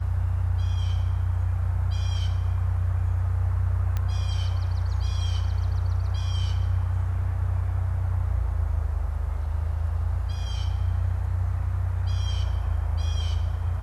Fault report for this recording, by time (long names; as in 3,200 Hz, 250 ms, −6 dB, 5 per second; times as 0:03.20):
0:03.97: click −16 dBFS